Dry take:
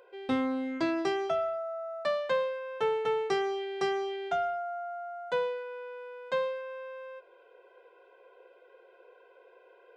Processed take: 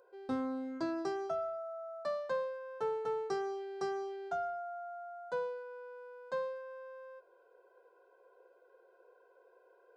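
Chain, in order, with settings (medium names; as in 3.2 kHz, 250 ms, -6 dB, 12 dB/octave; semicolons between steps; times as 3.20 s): high-order bell 2.6 kHz -12 dB 1.1 oct; trim -6.5 dB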